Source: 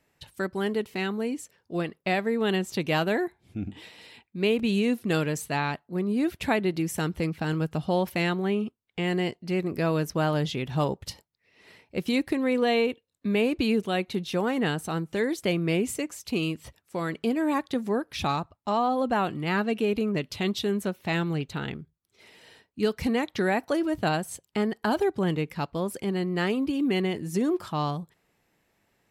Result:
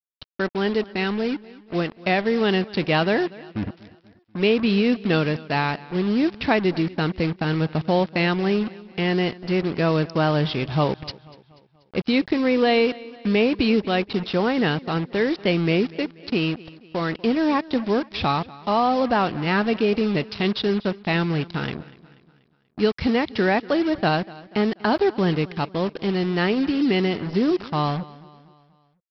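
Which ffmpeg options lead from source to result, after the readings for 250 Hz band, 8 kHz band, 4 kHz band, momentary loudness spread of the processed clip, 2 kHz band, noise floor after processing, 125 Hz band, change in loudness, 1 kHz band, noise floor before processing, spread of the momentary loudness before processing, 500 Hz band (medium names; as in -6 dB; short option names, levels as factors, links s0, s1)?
+5.0 dB, under -10 dB, +6.0 dB, 8 LU, +5.5 dB, -60 dBFS, +5.0 dB, +5.0 dB, +5.0 dB, -75 dBFS, 8 LU, +5.0 dB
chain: -af "aresample=11025,acrusher=bits=5:mix=0:aa=0.5,aresample=44100,aecho=1:1:242|484|726|968:0.0944|0.0463|0.0227|0.0111,volume=1.78"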